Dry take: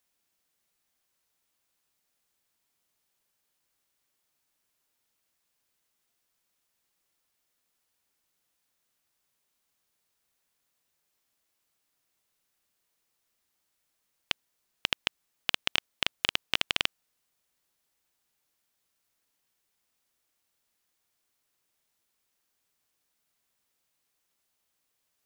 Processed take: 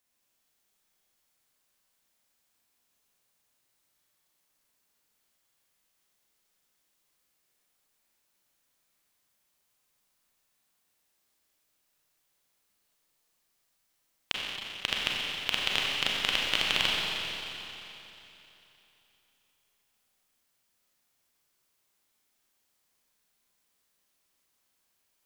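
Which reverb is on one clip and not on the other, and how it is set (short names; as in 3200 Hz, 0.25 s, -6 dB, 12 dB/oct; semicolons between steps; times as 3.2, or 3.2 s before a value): Schroeder reverb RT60 3.2 s, combs from 30 ms, DRR -3.5 dB; gain -2 dB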